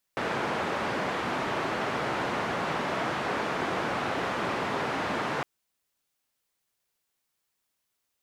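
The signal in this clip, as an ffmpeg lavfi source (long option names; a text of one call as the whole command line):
ffmpeg -f lavfi -i "anoisesrc=color=white:duration=5.26:sample_rate=44100:seed=1,highpass=frequency=130,lowpass=frequency=1300,volume=-12.9dB" out.wav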